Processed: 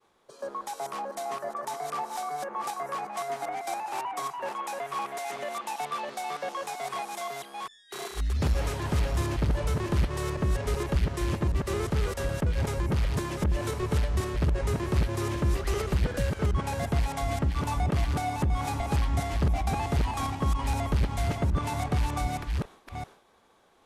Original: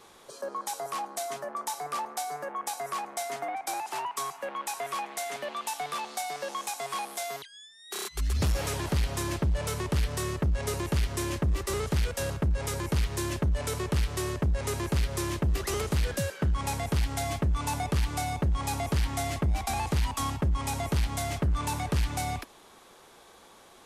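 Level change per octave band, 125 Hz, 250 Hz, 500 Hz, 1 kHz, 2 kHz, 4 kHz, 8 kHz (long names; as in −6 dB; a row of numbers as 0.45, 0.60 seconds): +1.5, +1.5, +1.5, +1.5, −0.5, −3.0, −5.5 decibels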